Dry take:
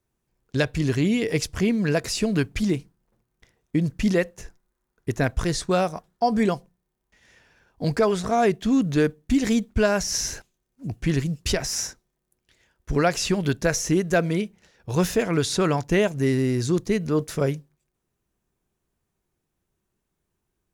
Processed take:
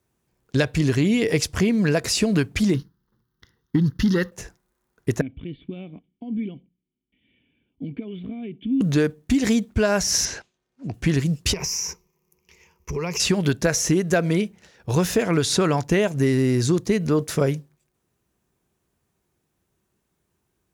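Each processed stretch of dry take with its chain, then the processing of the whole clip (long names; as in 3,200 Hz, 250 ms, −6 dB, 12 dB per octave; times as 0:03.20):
0:02.74–0:04.32: leveller curve on the samples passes 1 + phaser with its sweep stopped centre 2,400 Hz, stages 6
0:05.21–0:08.81: high-shelf EQ 3,300 Hz +10 dB + downward compressor 5 to 1, threshold −23 dBFS + formant resonators in series i
0:10.25–0:10.94: low-pass filter 5,000 Hz + low-shelf EQ 230 Hz −8 dB
0:11.53–0:13.20: EQ curve with evenly spaced ripples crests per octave 0.79, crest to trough 15 dB + downward compressor 12 to 1, threshold −28 dBFS
whole clip: downward compressor, threshold −21 dBFS; high-pass filter 58 Hz; level +5.5 dB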